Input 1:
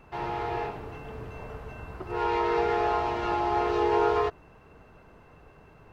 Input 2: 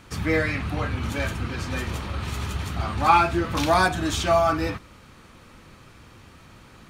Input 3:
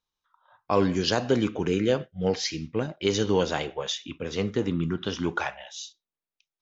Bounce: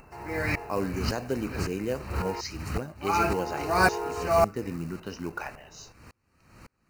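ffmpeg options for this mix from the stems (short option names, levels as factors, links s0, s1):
-filter_complex "[0:a]acompressor=mode=upward:threshold=0.02:ratio=2.5,volume=0.355,asplit=3[s0][s1][s2];[s0]atrim=end=2.41,asetpts=PTS-STARTPTS,afade=t=out:st=2.406:d=0.004:c=hsin[s3];[s1]atrim=start=2.41:end=3.22,asetpts=PTS-STARTPTS,volume=0[s4];[s2]atrim=start=3.22,asetpts=PTS-STARTPTS,afade=t=in:d=0.004:c=hsin[s5];[s3][s4][s5]concat=n=3:v=0:a=1[s6];[1:a]aeval=exprs='val(0)*pow(10,-36*if(lt(mod(-1.8*n/s,1),2*abs(-1.8)/1000),1-mod(-1.8*n/s,1)/(2*abs(-1.8)/1000),(mod(-1.8*n/s,1)-2*abs(-1.8)/1000)/(1-2*abs(-1.8)/1000))/20)':c=same,volume=1.33[s7];[2:a]volume=0.447[s8];[s6][s7][s8]amix=inputs=3:normalize=0,acrusher=bits=5:mode=log:mix=0:aa=0.000001,asuperstop=centerf=3400:order=4:qfactor=3"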